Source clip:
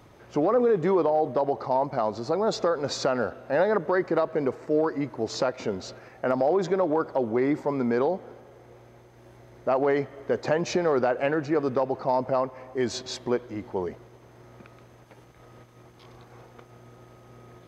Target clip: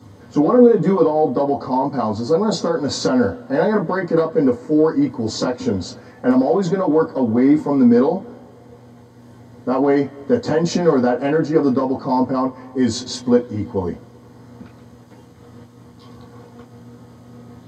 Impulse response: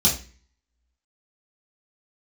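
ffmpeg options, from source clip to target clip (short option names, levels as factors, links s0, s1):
-filter_complex "[1:a]atrim=start_sample=2205,atrim=end_sample=3087,asetrate=57330,aresample=44100[s0];[0:a][s0]afir=irnorm=-1:irlink=0,volume=0.447"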